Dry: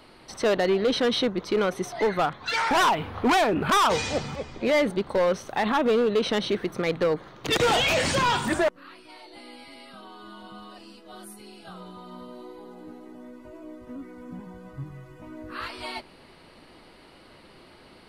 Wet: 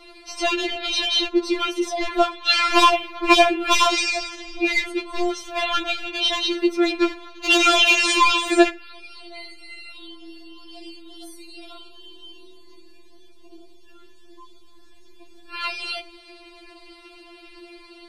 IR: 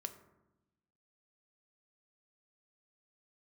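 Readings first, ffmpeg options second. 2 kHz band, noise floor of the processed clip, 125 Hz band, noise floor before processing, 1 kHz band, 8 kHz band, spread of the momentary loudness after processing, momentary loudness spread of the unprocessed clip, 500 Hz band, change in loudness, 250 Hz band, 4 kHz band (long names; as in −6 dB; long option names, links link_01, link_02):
+6.5 dB, −46 dBFS, below −15 dB, −52 dBFS, +3.5 dB, +6.5 dB, 17 LU, 22 LU, −0.5 dB, +5.0 dB, +4.0 dB, +8.5 dB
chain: -filter_complex "[0:a]asplit=2[link_01][link_02];[link_02]highshelf=frequency=1900:width_type=q:width=3:gain=8.5[link_03];[1:a]atrim=start_sample=2205,atrim=end_sample=6174,lowpass=8600[link_04];[link_03][link_04]afir=irnorm=-1:irlink=0,volume=-3.5dB[link_05];[link_01][link_05]amix=inputs=2:normalize=0,afftfilt=real='re*4*eq(mod(b,16),0)':imag='im*4*eq(mod(b,16),0)':win_size=2048:overlap=0.75,volume=3.5dB"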